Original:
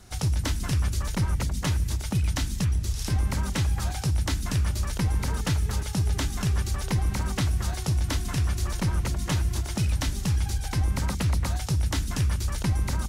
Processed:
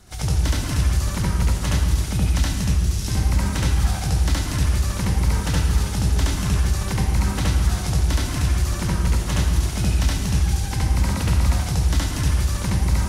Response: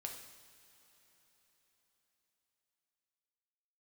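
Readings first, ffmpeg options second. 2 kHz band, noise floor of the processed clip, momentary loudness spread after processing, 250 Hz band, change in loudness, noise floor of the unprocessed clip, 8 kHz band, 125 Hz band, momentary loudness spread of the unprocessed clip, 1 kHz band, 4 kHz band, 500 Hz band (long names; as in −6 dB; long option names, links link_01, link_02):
+5.0 dB, −27 dBFS, 2 LU, +5.5 dB, +5.5 dB, −33 dBFS, +5.5 dB, +5.0 dB, 1 LU, +5.0 dB, +5.0 dB, +5.5 dB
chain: -filter_complex "[0:a]asplit=2[link_01][link_02];[1:a]atrim=start_sample=2205,asetrate=28224,aresample=44100,adelay=70[link_03];[link_02][link_03]afir=irnorm=-1:irlink=0,volume=3.5dB[link_04];[link_01][link_04]amix=inputs=2:normalize=0"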